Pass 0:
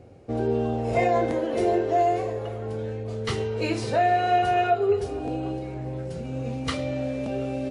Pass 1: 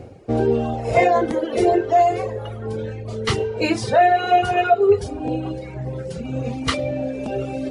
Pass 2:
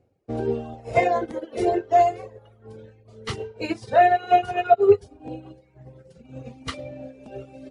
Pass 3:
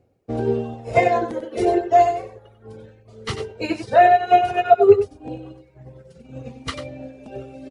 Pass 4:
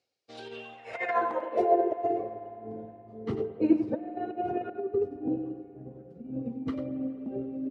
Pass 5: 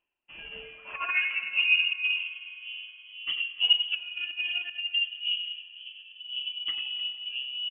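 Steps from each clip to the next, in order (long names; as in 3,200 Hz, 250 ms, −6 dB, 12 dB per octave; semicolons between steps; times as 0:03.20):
reverb reduction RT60 1.7 s; reversed playback; upward compression, threshold −36 dBFS; reversed playback; level +8 dB
in parallel at −1 dB: brickwall limiter −15 dBFS, peak gain reduction 10.5 dB; on the sum: expander for the loud parts 2.5 to 1, over −28 dBFS; level −1.5 dB
single-tap delay 94 ms −9.5 dB; level +3 dB
compressor whose output falls as the input rises −20 dBFS, ratio −0.5; band-pass filter sweep 4,600 Hz → 270 Hz, 0:00.26–0:02.29; spring reverb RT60 3.6 s, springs 52 ms, chirp 35 ms, DRR 13 dB; level +2 dB
single-tap delay 301 ms −18 dB; voice inversion scrambler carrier 3,200 Hz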